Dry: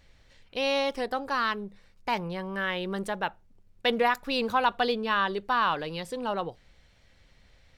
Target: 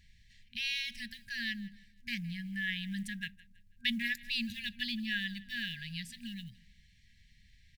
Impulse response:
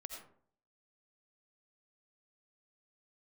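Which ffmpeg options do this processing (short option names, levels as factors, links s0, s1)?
-af "aecho=1:1:163|326|489:0.0891|0.0312|0.0109,acrusher=bits=9:mode=log:mix=0:aa=0.000001,afftfilt=real='re*(1-between(b*sr/4096,240,1600))':imag='im*(1-between(b*sr/4096,240,1600))':win_size=4096:overlap=0.75,volume=0.708"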